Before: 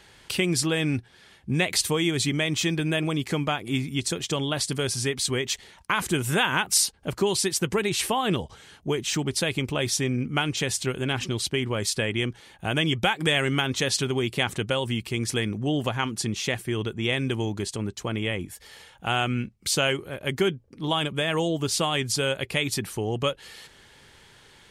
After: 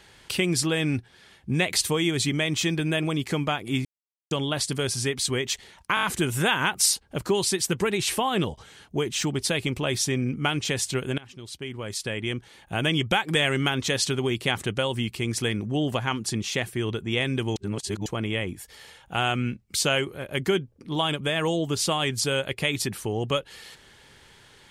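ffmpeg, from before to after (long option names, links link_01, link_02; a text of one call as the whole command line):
ffmpeg -i in.wav -filter_complex "[0:a]asplit=10[link_01][link_02][link_03][link_04][link_05][link_06][link_07][link_08][link_09][link_10];[link_01]atrim=end=3.85,asetpts=PTS-STARTPTS,afade=type=out:start_time=3.846:duration=0.004:curve=hsin[link_11];[link_02]atrim=start=3.85:end=4.31,asetpts=PTS-STARTPTS,volume=0[link_12];[link_03]atrim=start=4.31:end=5.972,asetpts=PTS-STARTPTS,afade=type=in:duration=0.004:curve=hsin[link_13];[link_04]atrim=start=5.948:end=5.972[link_14];[link_05]atrim=start=5.948:end=5.972[link_15];[link_06]atrim=start=5.948:end=5.972[link_16];[link_07]atrim=start=5.948:end=11.1,asetpts=PTS-STARTPTS,afade=type=out:start_time=5.148:duration=0.004:curve=hsin:silence=0.0794328[link_17];[link_08]atrim=start=11.1:end=17.482,asetpts=PTS-STARTPTS,afade=type=in:duration=1.58:silence=0.0794328[link_18];[link_09]atrim=start=17.478:end=17.982,asetpts=PTS-STARTPTS,areverse[link_19];[link_10]atrim=start=17.978[link_20];[link_11][link_12][link_13]concat=n=3:v=0:a=1[link_21];[link_21][link_14]acrossfade=duration=0.004:curve1=hsin:curve2=hsin[link_22];[link_22][link_15]acrossfade=duration=0.004:curve1=hsin:curve2=hsin[link_23];[link_23][link_16]acrossfade=duration=0.004:curve1=hsin:curve2=hsin[link_24];[link_17][link_18]concat=n=2:v=0:a=1[link_25];[link_24][link_25]acrossfade=duration=0.004:curve1=hsin:curve2=hsin[link_26];[link_26][link_19]acrossfade=duration=0.004:curve1=hsin:curve2=hsin[link_27];[link_27][link_20]acrossfade=duration=0.004:curve1=hsin:curve2=hsin" out.wav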